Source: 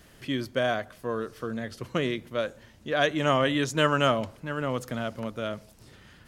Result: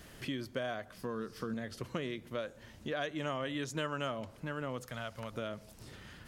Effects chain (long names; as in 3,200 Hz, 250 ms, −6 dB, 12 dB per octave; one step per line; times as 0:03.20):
0:04.86–0:05.33: parametric band 290 Hz −13 dB 1.8 octaves
downward compressor 3 to 1, threshold −39 dBFS, peak gain reduction 16 dB
0:00.94–0:01.54: thirty-one-band graphic EQ 200 Hz +9 dB, 630 Hz −7 dB, 5,000 Hz +8 dB
level +1 dB